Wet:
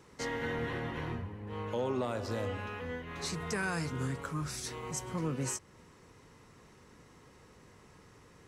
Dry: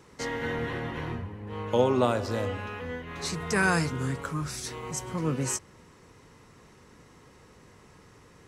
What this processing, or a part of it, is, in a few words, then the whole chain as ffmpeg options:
soft clipper into limiter: -af "asoftclip=type=tanh:threshold=-13dB,alimiter=limit=-21.5dB:level=0:latency=1:release=257,volume=-3.5dB"

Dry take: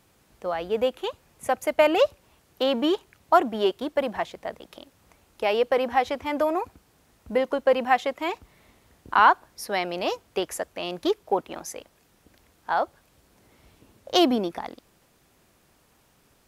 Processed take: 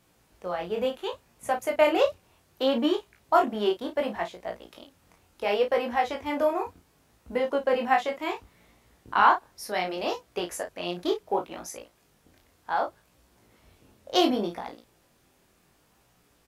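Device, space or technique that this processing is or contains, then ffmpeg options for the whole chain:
double-tracked vocal: -filter_complex "[0:a]asplit=2[link_01][link_02];[link_02]adelay=34,volume=-8dB[link_03];[link_01][link_03]amix=inputs=2:normalize=0,flanger=delay=16.5:depth=7:speed=0.68"

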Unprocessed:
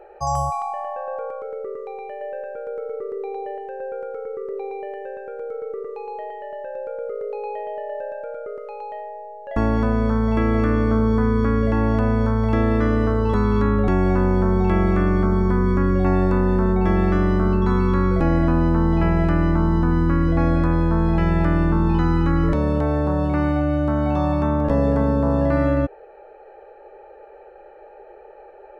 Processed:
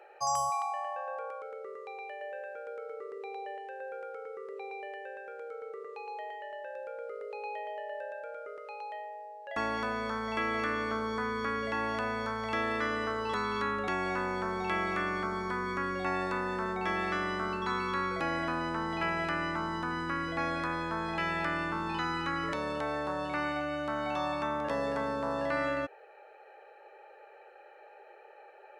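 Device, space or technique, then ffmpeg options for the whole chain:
filter by subtraction: -filter_complex "[0:a]asplit=2[link_01][link_02];[link_02]lowpass=2800,volume=-1[link_03];[link_01][link_03]amix=inputs=2:normalize=0"

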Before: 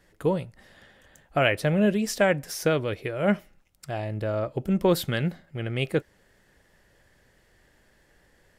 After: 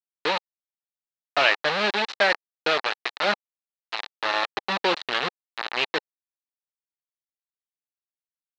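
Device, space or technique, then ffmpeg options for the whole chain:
hand-held game console: -af "acrusher=bits=3:mix=0:aa=0.000001,highpass=460,equalizer=frequency=510:width_type=q:width=4:gain=-3,equalizer=frequency=840:width_type=q:width=4:gain=5,equalizer=frequency=1200:width_type=q:width=4:gain=4,equalizer=frequency=1800:width_type=q:width=4:gain=6,equalizer=frequency=2700:width_type=q:width=4:gain=4,equalizer=frequency=4000:width_type=q:width=4:gain=9,lowpass=frequency=4700:width=0.5412,lowpass=frequency=4700:width=1.3066"

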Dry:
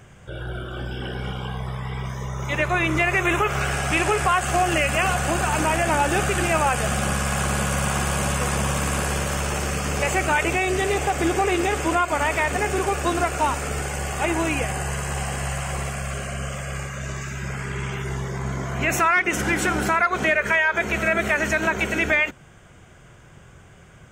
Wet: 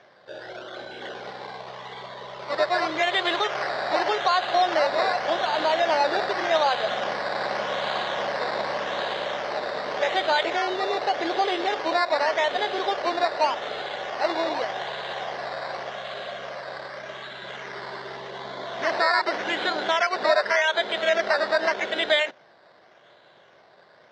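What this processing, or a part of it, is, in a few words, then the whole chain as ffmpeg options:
circuit-bent sampling toy: -af "acrusher=samples=11:mix=1:aa=0.000001:lfo=1:lforange=6.6:lforate=0.85,highpass=510,equalizer=frequency=610:width_type=q:width=4:gain=6,equalizer=frequency=1300:width_type=q:width=4:gain=-5,equalizer=frequency=2500:width_type=q:width=4:gain=-9,equalizer=frequency=3700:width_type=q:width=4:gain=4,lowpass=frequency=4300:width=0.5412,lowpass=frequency=4300:width=1.3066"

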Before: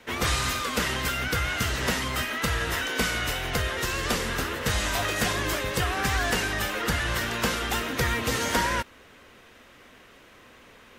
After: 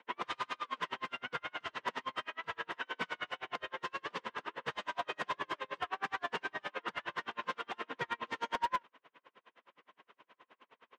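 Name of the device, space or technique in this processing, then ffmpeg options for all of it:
helicopter radio: -af "highpass=360,lowpass=2700,equalizer=frequency=160:width_type=o:width=0.33:gain=8,equalizer=frequency=1000:width_type=o:width=0.33:gain=10,equalizer=frequency=3150:width_type=o:width=0.33:gain=4,aeval=exprs='val(0)*pow(10,-39*(0.5-0.5*cos(2*PI*9.6*n/s))/20)':channel_layout=same,asoftclip=type=hard:threshold=-20dB,volume=-5.5dB"

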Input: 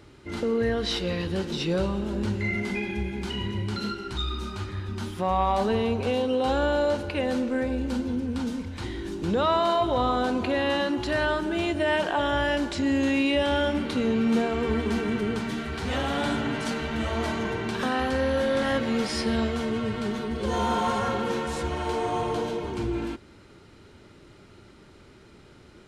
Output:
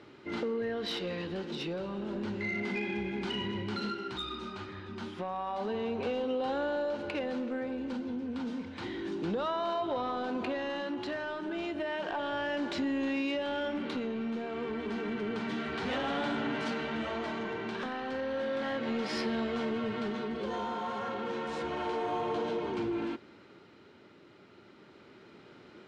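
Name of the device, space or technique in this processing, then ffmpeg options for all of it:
AM radio: -af "highpass=190,lowpass=4000,acompressor=threshold=-27dB:ratio=10,asoftclip=type=tanh:threshold=-24dB,tremolo=f=0.31:d=0.35"

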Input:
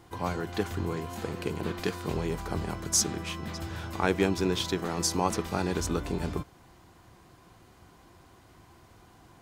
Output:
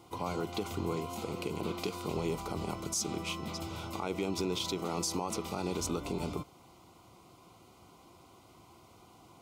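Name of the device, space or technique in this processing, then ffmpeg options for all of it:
PA system with an anti-feedback notch: -af "highpass=frequency=160:poles=1,asuperstop=centerf=1700:order=4:qfactor=2.5,alimiter=limit=-23.5dB:level=0:latency=1:release=71"

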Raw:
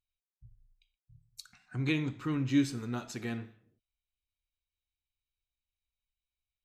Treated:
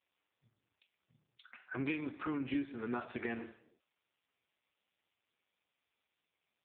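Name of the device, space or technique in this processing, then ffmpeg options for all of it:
voicemail: -af "highpass=360,lowpass=3100,acompressor=threshold=-45dB:ratio=6,volume=11.5dB" -ar 8000 -c:a libopencore_amrnb -b:a 4750

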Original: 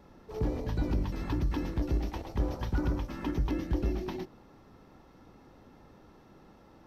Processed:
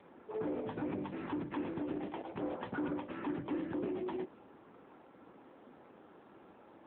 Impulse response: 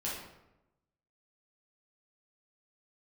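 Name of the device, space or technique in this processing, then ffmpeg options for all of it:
telephone: -af "highpass=270,lowpass=3100,asoftclip=type=tanh:threshold=-32.5dB,volume=2dB" -ar 8000 -c:a libopencore_amrnb -b:a 7950

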